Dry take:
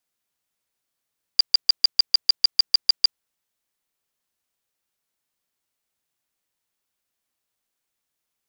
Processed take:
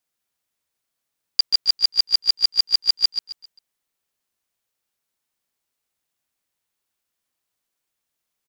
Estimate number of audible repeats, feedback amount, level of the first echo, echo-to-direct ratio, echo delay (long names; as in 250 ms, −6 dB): 3, 33%, −8.0 dB, −7.5 dB, 133 ms